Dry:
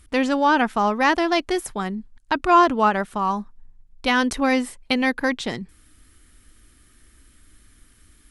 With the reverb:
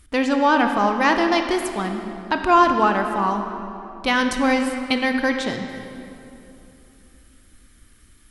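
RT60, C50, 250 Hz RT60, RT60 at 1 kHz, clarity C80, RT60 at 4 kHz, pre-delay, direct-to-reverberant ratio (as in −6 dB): 2.9 s, 6.0 dB, 3.3 s, 2.7 s, 7.0 dB, 1.9 s, 21 ms, 5.0 dB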